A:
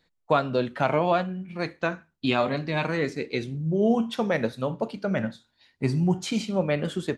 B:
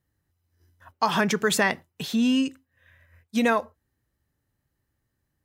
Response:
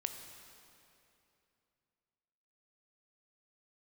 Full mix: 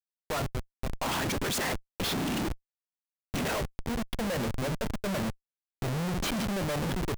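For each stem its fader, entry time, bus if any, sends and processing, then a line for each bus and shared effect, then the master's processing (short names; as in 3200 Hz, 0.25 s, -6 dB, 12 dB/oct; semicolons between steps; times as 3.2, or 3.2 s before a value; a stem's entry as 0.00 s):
-5.5 dB, 0.00 s, no send, auto duck -19 dB, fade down 0.25 s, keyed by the second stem
-2.0 dB, 0.00 s, no send, whisperiser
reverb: off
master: Schmitt trigger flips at -39 dBFS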